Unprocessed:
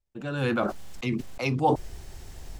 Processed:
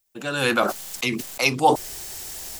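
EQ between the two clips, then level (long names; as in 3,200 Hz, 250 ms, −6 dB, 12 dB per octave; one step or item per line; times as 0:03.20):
RIAA equalisation recording
+7.5 dB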